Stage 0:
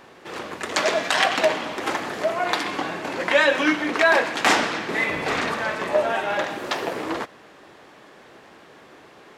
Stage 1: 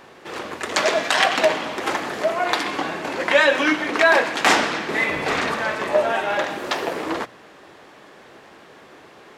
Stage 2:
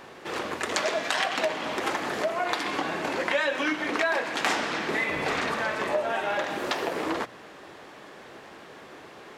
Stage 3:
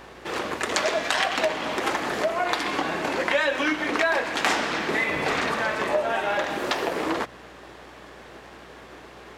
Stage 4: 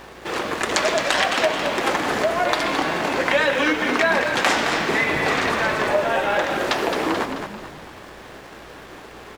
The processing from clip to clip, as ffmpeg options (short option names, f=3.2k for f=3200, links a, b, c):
-af "bandreject=f=60:t=h:w=6,bandreject=f=120:t=h:w=6,bandreject=f=180:t=h:w=6,bandreject=f=240:t=h:w=6,bandreject=f=300:t=h:w=6,volume=2dB"
-af "acompressor=threshold=-26dB:ratio=3"
-filter_complex "[0:a]asplit=2[a][b];[b]aeval=exprs='sgn(val(0))*max(abs(val(0))-0.00447,0)':c=same,volume=-7.5dB[c];[a][c]amix=inputs=2:normalize=0,aeval=exprs='val(0)+0.00178*(sin(2*PI*60*n/s)+sin(2*PI*2*60*n/s)/2+sin(2*PI*3*60*n/s)/3+sin(2*PI*4*60*n/s)/4+sin(2*PI*5*60*n/s)/5)':c=same"
-filter_complex "[0:a]asplit=2[a][b];[b]acrusher=bits=6:mix=0:aa=0.000001,volume=-12dB[c];[a][c]amix=inputs=2:normalize=0,asplit=6[d][e][f][g][h][i];[e]adelay=217,afreqshift=-58,volume=-7dB[j];[f]adelay=434,afreqshift=-116,volume=-14.3dB[k];[g]adelay=651,afreqshift=-174,volume=-21.7dB[l];[h]adelay=868,afreqshift=-232,volume=-29dB[m];[i]adelay=1085,afreqshift=-290,volume=-36.3dB[n];[d][j][k][l][m][n]amix=inputs=6:normalize=0,volume=1.5dB"